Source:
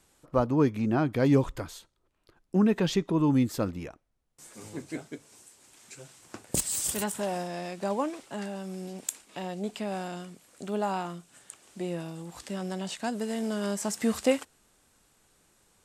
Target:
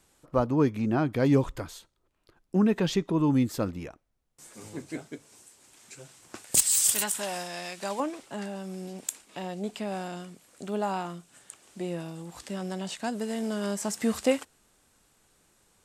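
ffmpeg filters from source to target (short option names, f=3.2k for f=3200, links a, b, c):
-filter_complex "[0:a]asettb=1/sr,asplit=3[a][b][c];[a]atrim=end=6.354[d];[b]atrim=start=6.35:end=8,asetpts=PTS-STARTPTS,afade=t=in:d=0.004:c=qsin,afade=t=out:st=1.646:d=0.004:c=qsin,tiltshelf=f=970:g=-7.5[e];[c]atrim=start=7.996[f];[d][e]acrossfade=d=0.004:c1=hsin:c2=qsin[g];[g][f]acrossfade=d=0.004:c1=qsin:c2=hsin"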